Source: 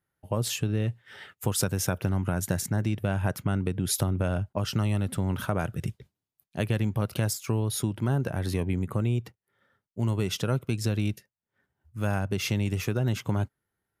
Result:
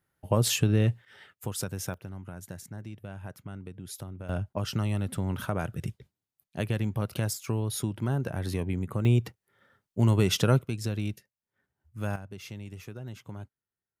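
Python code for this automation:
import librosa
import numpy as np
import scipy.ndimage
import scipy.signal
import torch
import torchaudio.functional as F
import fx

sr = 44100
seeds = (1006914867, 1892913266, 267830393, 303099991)

y = fx.gain(x, sr, db=fx.steps((0.0, 4.0), (1.05, -7.0), (1.94, -14.0), (4.29, -2.5), (9.05, 4.5), (10.62, -4.0), (12.16, -14.0)))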